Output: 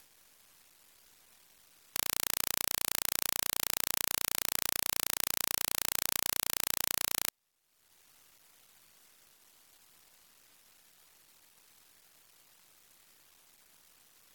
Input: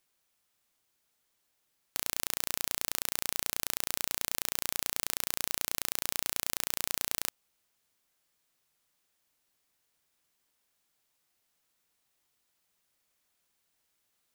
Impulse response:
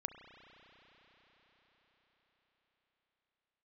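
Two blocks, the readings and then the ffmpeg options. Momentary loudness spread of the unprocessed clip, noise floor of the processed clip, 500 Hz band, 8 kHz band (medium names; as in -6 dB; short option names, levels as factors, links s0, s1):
1 LU, -81 dBFS, 0.0 dB, +1.5 dB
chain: -af "acrusher=bits=9:dc=4:mix=0:aa=0.000001,acompressor=mode=upward:threshold=0.00891:ratio=2.5" -ar 48000 -c:a aac -b:a 48k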